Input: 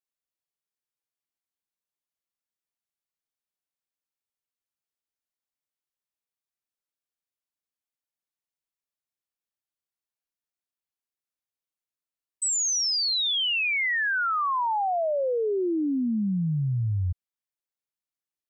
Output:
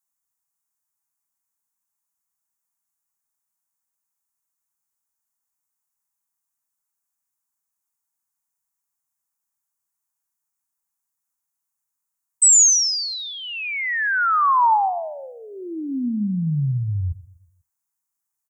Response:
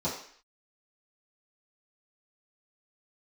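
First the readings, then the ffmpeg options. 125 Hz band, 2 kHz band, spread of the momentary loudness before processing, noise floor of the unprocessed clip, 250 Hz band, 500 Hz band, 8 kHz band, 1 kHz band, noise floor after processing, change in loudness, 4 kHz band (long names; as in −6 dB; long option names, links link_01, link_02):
+3.5 dB, +2.5 dB, 5 LU, below −85 dBFS, +1.5 dB, −7.5 dB, +12.0 dB, +8.0 dB, −82 dBFS, +6.5 dB, −1.0 dB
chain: -filter_complex "[0:a]firequalizer=gain_entry='entry(250,0);entry(460,-18);entry(870,8);entry(3200,-11);entry(6700,11)':delay=0.05:min_phase=1,asplit=2[link_01][link_02];[link_02]adelay=123,lowpass=frequency=3600:poles=1,volume=-19dB,asplit=2[link_03][link_04];[link_04]adelay=123,lowpass=frequency=3600:poles=1,volume=0.46,asplit=2[link_05][link_06];[link_06]adelay=123,lowpass=frequency=3600:poles=1,volume=0.46,asplit=2[link_07][link_08];[link_08]adelay=123,lowpass=frequency=3600:poles=1,volume=0.46[link_09];[link_01][link_03][link_05][link_07][link_09]amix=inputs=5:normalize=0,asplit=2[link_10][link_11];[1:a]atrim=start_sample=2205,asetrate=37044,aresample=44100[link_12];[link_11][link_12]afir=irnorm=-1:irlink=0,volume=-29dB[link_13];[link_10][link_13]amix=inputs=2:normalize=0,volume=2.5dB"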